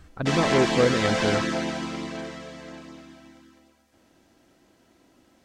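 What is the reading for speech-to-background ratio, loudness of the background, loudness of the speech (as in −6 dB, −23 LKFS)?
1.0 dB, −26.5 LKFS, −25.5 LKFS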